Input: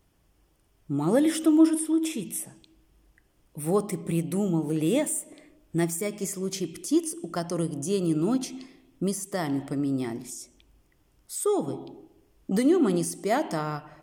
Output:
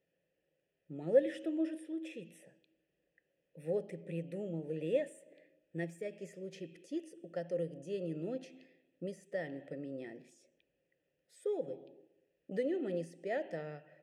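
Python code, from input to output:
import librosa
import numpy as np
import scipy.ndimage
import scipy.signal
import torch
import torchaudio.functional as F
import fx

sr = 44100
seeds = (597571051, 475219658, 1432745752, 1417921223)

y = fx.vowel_filter(x, sr, vowel='e')
y = fx.peak_eq(y, sr, hz=160.0, db=13.0, octaves=0.55)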